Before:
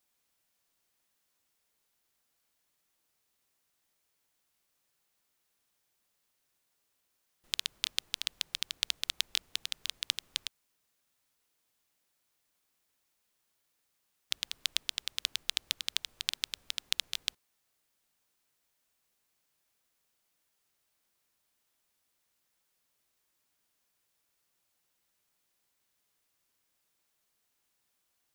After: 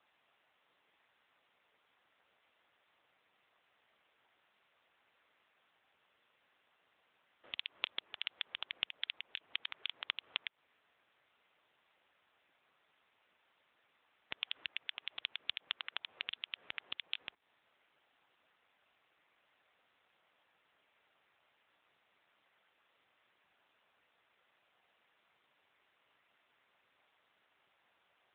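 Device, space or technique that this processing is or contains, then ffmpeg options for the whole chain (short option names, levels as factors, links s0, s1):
voicemail: -filter_complex "[0:a]asplit=3[s0][s1][s2];[s0]afade=t=out:st=14.42:d=0.02[s3];[s1]equalizer=f=1700:t=o:w=0.9:g=2,afade=t=in:st=14.42:d=0.02,afade=t=out:st=15.06:d=0.02[s4];[s2]afade=t=in:st=15.06:d=0.02[s5];[s3][s4][s5]amix=inputs=3:normalize=0,highpass=390,lowpass=3000,acompressor=threshold=0.00708:ratio=10,volume=5.01" -ar 8000 -c:a libopencore_amrnb -b:a 7950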